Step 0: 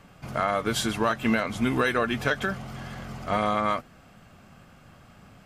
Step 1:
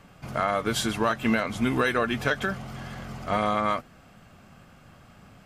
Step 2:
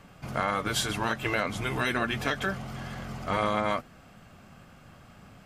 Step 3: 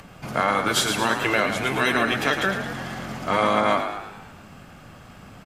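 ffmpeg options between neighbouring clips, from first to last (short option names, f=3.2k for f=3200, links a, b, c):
-af anull
-af "afftfilt=real='re*lt(hypot(re,im),0.316)':imag='im*lt(hypot(re,im),0.316)':win_size=1024:overlap=0.75"
-filter_complex "[0:a]acrossover=split=150[a][b];[a]acompressor=threshold=-49dB:ratio=6[c];[b]asplit=7[d][e][f][g][h][i][j];[e]adelay=110,afreqshift=49,volume=-7.5dB[k];[f]adelay=220,afreqshift=98,volume=-13dB[l];[g]adelay=330,afreqshift=147,volume=-18.5dB[m];[h]adelay=440,afreqshift=196,volume=-24dB[n];[i]adelay=550,afreqshift=245,volume=-29.6dB[o];[j]adelay=660,afreqshift=294,volume=-35.1dB[p];[d][k][l][m][n][o][p]amix=inputs=7:normalize=0[q];[c][q]amix=inputs=2:normalize=0,acompressor=mode=upward:threshold=-50dB:ratio=2.5,volume=6.5dB"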